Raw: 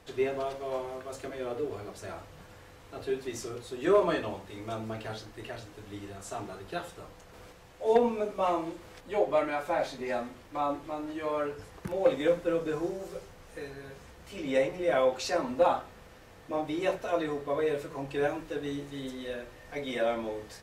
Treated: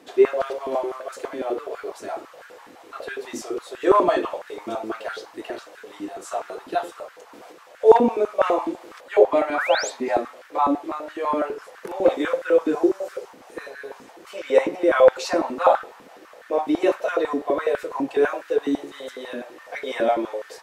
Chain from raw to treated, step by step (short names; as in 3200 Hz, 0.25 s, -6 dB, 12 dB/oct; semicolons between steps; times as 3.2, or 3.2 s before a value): painted sound rise, 9.54–9.9, 1100–8200 Hz -35 dBFS; stepped high-pass 12 Hz 270–1500 Hz; gain +4 dB